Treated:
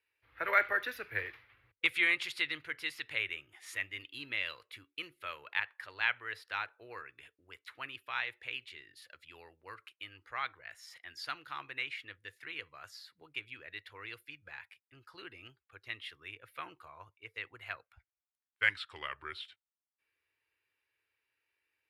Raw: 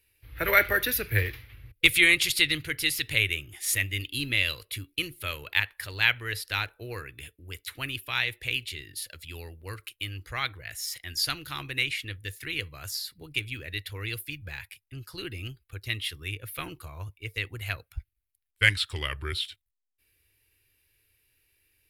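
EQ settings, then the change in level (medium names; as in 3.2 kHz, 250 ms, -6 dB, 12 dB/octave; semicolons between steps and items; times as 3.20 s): band-pass filter 1.1 kHz, Q 1.2; -2.5 dB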